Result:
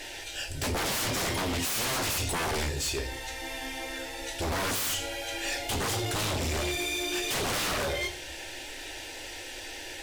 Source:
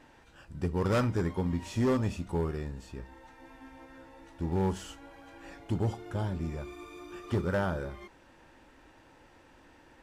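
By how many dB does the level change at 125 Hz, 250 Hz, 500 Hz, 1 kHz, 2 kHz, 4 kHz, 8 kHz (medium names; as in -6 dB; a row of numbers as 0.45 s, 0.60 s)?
-3.5 dB, -3.5 dB, 0.0 dB, +6.0 dB, +11.5 dB, +19.5 dB, +21.5 dB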